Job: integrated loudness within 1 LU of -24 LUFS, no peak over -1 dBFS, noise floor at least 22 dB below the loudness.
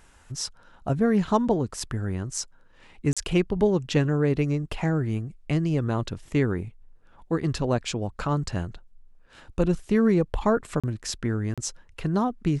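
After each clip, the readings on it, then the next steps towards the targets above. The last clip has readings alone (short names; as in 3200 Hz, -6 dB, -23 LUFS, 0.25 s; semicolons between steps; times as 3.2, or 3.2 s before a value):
dropouts 3; longest dropout 36 ms; loudness -26.5 LUFS; peak -9.5 dBFS; loudness target -24.0 LUFS
-> interpolate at 3.13/10.8/11.54, 36 ms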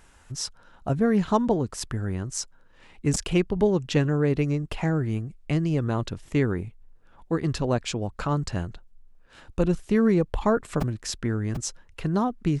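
dropouts 0; loudness -26.5 LUFS; peak -9.5 dBFS; loudness target -24.0 LUFS
-> gain +2.5 dB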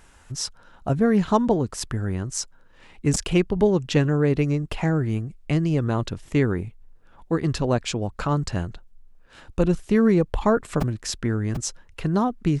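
loudness -24.0 LUFS; peak -7.0 dBFS; noise floor -53 dBFS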